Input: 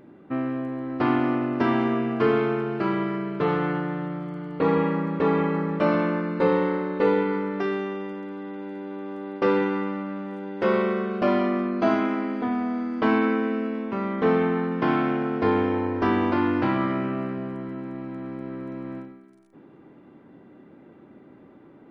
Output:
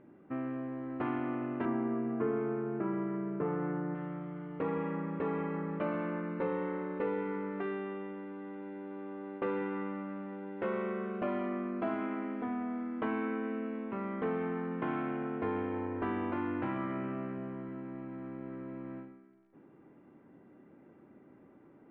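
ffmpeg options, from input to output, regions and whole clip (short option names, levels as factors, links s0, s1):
-filter_complex "[0:a]asettb=1/sr,asplit=3[s0][s1][s2];[s0]atrim=end=1.654[s3];[s1]atrim=start=1.65:end=3.95,asetpts=PTS-STARTPTS,afade=t=in:d=0.004:c=qsin,afade=t=out:st=2.296:d=0.004:c=qsin,highpass=220,lowpass=2300,aemphasis=mode=reproduction:type=riaa[s4];[s2]atrim=start=3.946[s5];[s3][s4]acrossfade=d=0.004:c1=hsin:c2=qsin[s6];[s6][s5]acrossfade=d=0.004:c1=qsin:c2=hsin,acompressor=threshold=0.0562:ratio=2,lowpass=f=2800:w=0.5412,lowpass=f=2800:w=1.3066,volume=0.376"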